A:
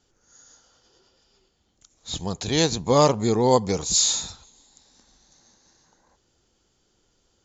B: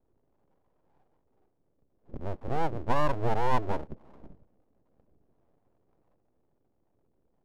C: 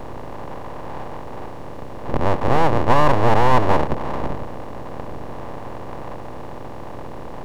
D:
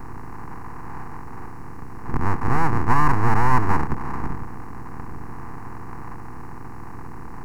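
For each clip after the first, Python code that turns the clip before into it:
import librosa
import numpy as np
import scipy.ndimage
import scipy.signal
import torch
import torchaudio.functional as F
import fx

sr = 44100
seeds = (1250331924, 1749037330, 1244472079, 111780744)

y1 = scipy.signal.sosfilt(scipy.signal.butter(6, 560.0, 'lowpass', fs=sr, output='sos'), x)
y1 = np.abs(y1)
y1 = y1 * librosa.db_to_amplitude(-1.5)
y2 = fx.bin_compress(y1, sr, power=0.4)
y2 = y2 * librosa.db_to_amplitude(8.5)
y3 = fx.fixed_phaser(y2, sr, hz=1400.0, stages=4)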